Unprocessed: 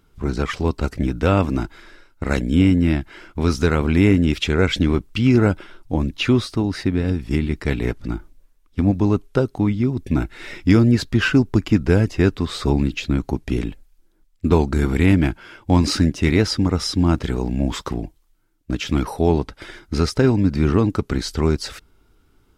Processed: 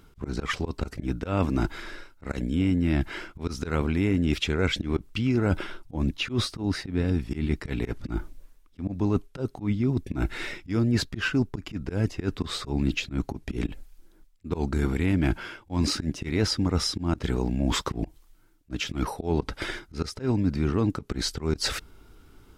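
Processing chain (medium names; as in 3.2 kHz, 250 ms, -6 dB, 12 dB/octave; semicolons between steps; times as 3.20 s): reverse; compression 5:1, threshold -28 dBFS, peak gain reduction 17 dB; reverse; slow attack 111 ms; trim +5.5 dB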